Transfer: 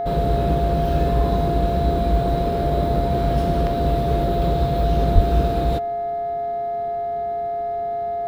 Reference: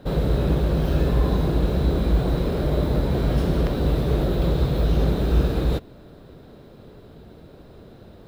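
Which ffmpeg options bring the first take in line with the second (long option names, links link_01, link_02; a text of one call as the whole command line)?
ffmpeg -i in.wav -filter_complex "[0:a]bandreject=frequency=420.6:width_type=h:width=4,bandreject=frequency=841.2:width_type=h:width=4,bandreject=frequency=1261.8:width_type=h:width=4,bandreject=frequency=1682.4:width_type=h:width=4,bandreject=frequency=2103:width_type=h:width=4,bandreject=frequency=690:width=30,asplit=3[link_01][link_02][link_03];[link_01]afade=type=out:start_time=5.14:duration=0.02[link_04];[link_02]highpass=frequency=140:width=0.5412,highpass=frequency=140:width=1.3066,afade=type=in:start_time=5.14:duration=0.02,afade=type=out:start_time=5.26:duration=0.02[link_05];[link_03]afade=type=in:start_time=5.26:duration=0.02[link_06];[link_04][link_05][link_06]amix=inputs=3:normalize=0" out.wav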